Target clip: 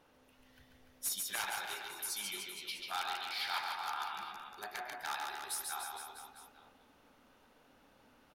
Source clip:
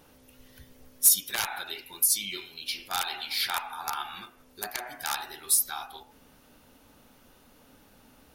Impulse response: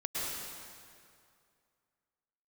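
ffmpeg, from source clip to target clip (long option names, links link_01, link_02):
-filter_complex "[0:a]aecho=1:1:140|294|463.4|649.7|854.7:0.631|0.398|0.251|0.158|0.1,asplit=2[link_01][link_02];[link_02]highpass=frequency=720:poles=1,volume=8dB,asoftclip=type=tanh:threshold=-5dB[link_03];[link_01][link_03]amix=inputs=2:normalize=0,lowpass=frequency=2000:poles=1,volume=-6dB,volume=-8.5dB"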